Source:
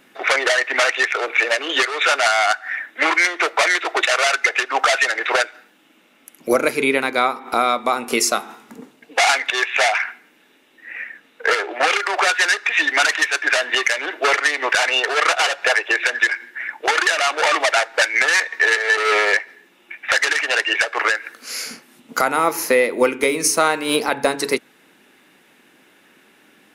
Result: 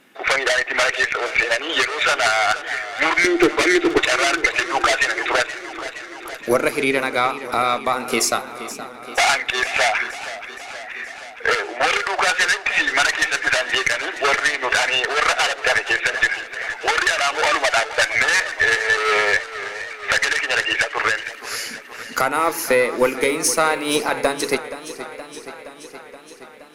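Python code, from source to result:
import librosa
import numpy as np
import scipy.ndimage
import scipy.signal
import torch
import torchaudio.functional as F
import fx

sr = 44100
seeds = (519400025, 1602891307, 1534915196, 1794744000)

y = fx.low_shelf_res(x, sr, hz=480.0, db=13.0, q=3.0, at=(3.24, 3.98))
y = fx.cheby_harmonics(y, sr, harmonics=(4, 5, 6, 7), levels_db=(-15, -21, -25, -28), full_scale_db=0.0)
y = fx.echo_warbled(y, sr, ms=472, feedback_pct=70, rate_hz=2.8, cents=88, wet_db=-14)
y = F.gain(torch.from_numpy(y), -2.5).numpy()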